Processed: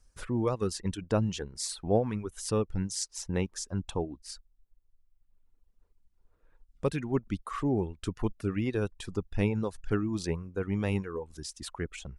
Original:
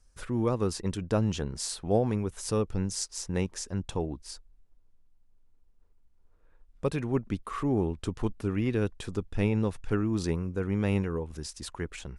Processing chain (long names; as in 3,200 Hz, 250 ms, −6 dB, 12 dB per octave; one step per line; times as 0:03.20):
reverb reduction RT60 1.3 s